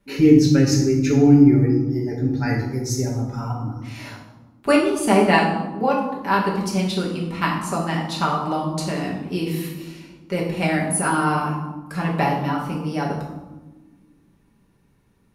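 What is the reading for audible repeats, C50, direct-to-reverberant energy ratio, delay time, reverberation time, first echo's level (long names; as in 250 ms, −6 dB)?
no echo audible, 4.0 dB, −4.0 dB, no echo audible, 1.2 s, no echo audible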